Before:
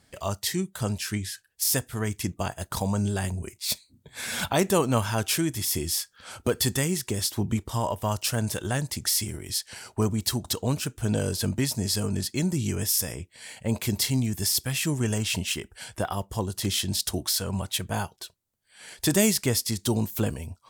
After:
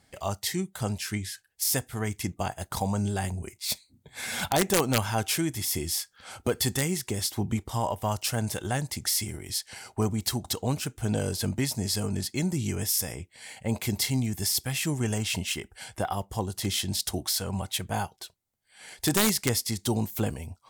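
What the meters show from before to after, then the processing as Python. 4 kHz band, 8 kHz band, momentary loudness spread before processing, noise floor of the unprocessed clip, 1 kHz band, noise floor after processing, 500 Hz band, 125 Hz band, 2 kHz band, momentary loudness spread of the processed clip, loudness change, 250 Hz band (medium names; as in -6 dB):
-1.5 dB, -2.0 dB, 8 LU, -65 dBFS, +0.5 dB, -67 dBFS, -2.0 dB, -2.0 dB, -0.5 dB, 8 LU, -1.5 dB, -2.0 dB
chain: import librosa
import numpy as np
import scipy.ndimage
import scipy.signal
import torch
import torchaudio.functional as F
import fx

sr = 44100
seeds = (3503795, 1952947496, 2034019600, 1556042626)

y = fx.small_body(x, sr, hz=(780.0, 2100.0), ring_ms=30, db=7)
y = (np.mod(10.0 ** (11.5 / 20.0) * y + 1.0, 2.0) - 1.0) / 10.0 ** (11.5 / 20.0)
y = y * 10.0 ** (-2.0 / 20.0)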